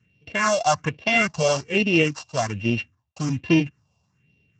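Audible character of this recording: a buzz of ramps at a fixed pitch in blocks of 16 samples; phasing stages 4, 1.2 Hz, lowest notch 310–1300 Hz; Speex

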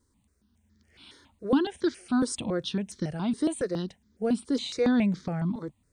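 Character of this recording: notches that jump at a steady rate 7.2 Hz 700–2700 Hz

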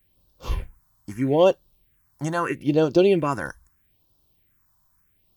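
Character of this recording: phasing stages 4, 0.78 Hz, lowest notch 410–2000 Hz

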